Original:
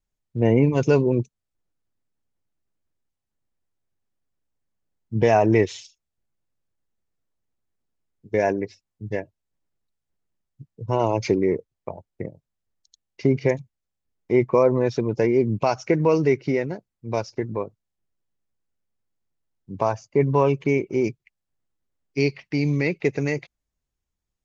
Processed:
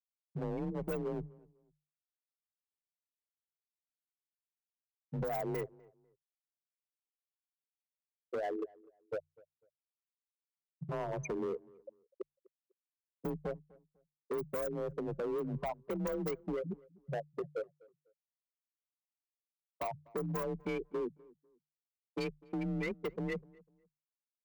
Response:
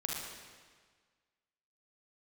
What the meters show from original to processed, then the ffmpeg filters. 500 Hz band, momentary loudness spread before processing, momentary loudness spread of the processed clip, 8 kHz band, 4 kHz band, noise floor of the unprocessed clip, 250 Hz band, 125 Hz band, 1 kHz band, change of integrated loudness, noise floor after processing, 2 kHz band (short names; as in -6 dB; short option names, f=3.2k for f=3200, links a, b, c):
-16.5 dB, 17 LU, 10 LU, n/a, -15.5 dB, -83 dBFS, -17.0 dB, -18.0 dB, -16.0 dB, -17.0 dB, under -85 dBFS, -16.5 dB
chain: -filter_complex "[0:a]acrossover=split=2100[a][b];[a]acrusher=bits=3:mode=log:mix=0:aa=0.000001[c];[c][b]amix=inputs=2:normalize=0,aemphasis=mode=production:type=75fm,afftfilt=real='re*gte(hypot(re,im),0.282)':imag='im*gte(hypot(re,im),0.282)':win_size=1024:overlap=0.75,highshelf=f=5.1k:g=11,acompressor=threshold=-30dB:ratio=12,volume=32.5dB,asoftclip=hard,volume=-32.5dB,bandreject=f=60:t=h:w=6,bandreject=f=120:t=h:w=6,afreqshift=29,asplit=2[d][e];[e]adelay=249,lowpass=f=1.4k:p=1,volume=-23dB,asplit=2[f][g];[g]adelay=249,lowpass=f=1.4k:p=1,volume=0.28[h];[f][h]amix=inputs=2:normalize=0[i];[d][i]amix=inputs=2:normalize=0"